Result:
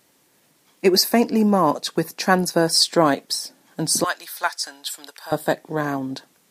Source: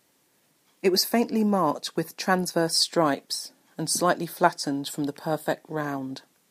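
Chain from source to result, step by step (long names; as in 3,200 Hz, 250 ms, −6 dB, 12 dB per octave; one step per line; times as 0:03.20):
0:04.04–0:05.32: high-pass filter 1,400 Hz 12 dB per octave
level +5.5 dB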